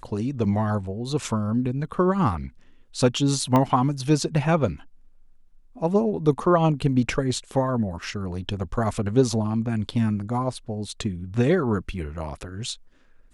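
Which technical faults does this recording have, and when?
0:03.56: click −10 dBFS

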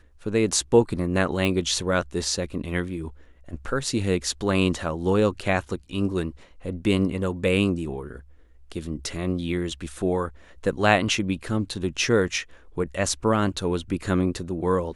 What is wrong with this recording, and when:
0:01.45: click −13 dBFS

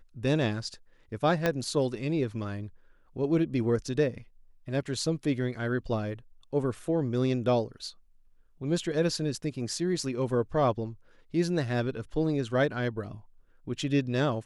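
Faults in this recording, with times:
0:01.46: click −12 dBFS

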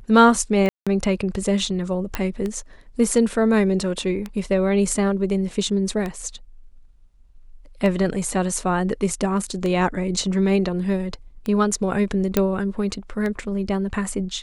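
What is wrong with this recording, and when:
scratch tick 33 1/3 rpm −15 dBFS
0:00.69–0:00.87: drop-out 176 ms
0:02.15: click −9 dBFS
0:12.37: click −4 dBFS

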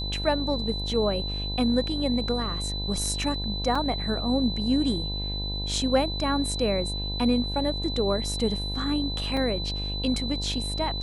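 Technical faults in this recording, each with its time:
mains buzz 50 Hz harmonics 20 −32 dBFS
whistle 4,000 Hz −32 dBFS
0:03.75: drop-out 4.5 ms
0:09.37: drop-out 2.2 ms

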